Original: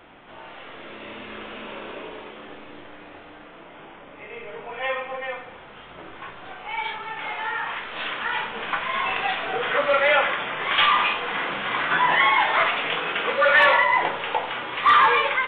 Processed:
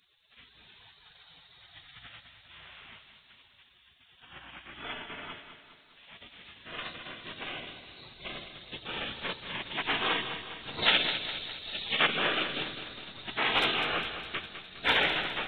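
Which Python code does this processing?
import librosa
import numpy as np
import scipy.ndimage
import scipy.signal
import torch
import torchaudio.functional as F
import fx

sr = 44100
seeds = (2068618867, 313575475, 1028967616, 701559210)

y = fx.spec_gate(x, sr, threshold_db=-20, keep='weak')
y = fx.high_shelf(y, sr, hz=2500.0, db=11.0, at=(10.82, 12.07))
y = fx.echo_feedback(y, sr, ms=204, feedback_pct=54, wet_db=-10)
y = F.gain(torch.from_numpy(y), 2.0).numpy()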